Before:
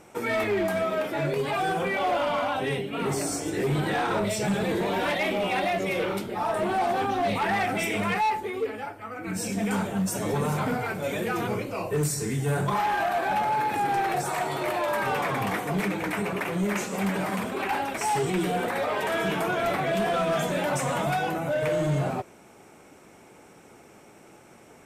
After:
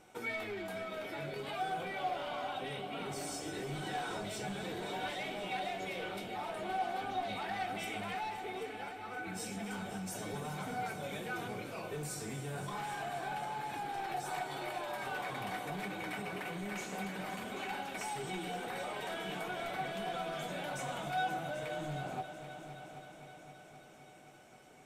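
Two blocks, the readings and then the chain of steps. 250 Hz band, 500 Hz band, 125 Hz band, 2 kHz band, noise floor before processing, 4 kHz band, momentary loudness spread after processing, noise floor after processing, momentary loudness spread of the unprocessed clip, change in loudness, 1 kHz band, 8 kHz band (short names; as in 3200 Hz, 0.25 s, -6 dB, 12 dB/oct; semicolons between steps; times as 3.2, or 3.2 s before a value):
-14.5 dB, -14.5 dB, -15.0 dB, -11.0 dB, -52 dBFS, -8.0 dB, 6 LU, -55 dBFS, 4 LU, -12.5 dB, -11.5 dB, -11.5 dB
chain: bell 3600 Hz +6 dB 0.79 oct; compressor, threshold -28 dBFS, peak gain reduction 6.5 dB; resonator 750 Hz, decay 0.17 s, harmonics all, mix 80%; on a send: multi-head echo 0.262 s, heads all three, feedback 61%, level -15 dB; on the sum: gain +2 dB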